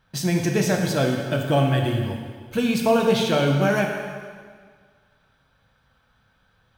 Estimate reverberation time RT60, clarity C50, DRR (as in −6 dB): 1.8 s, 3.5 dB, 1.0 dB